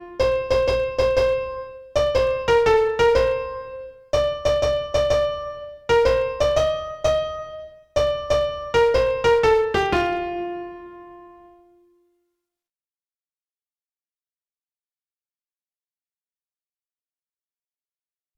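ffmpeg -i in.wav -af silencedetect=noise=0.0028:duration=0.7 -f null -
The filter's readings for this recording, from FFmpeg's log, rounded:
silence_start: 11.78
silence_end: 18.38 | silence_duration: 6.60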